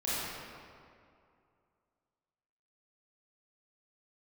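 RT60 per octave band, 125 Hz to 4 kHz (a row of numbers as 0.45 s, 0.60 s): 2.5 s, 2.4 s, 2.4 s, 2.4 s, 1.9 s, 1.4 s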